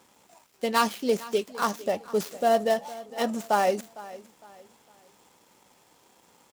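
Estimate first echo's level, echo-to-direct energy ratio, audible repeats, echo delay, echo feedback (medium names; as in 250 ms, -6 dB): -18.5 dB, -18.0 dB, 2, 457 ms, 34%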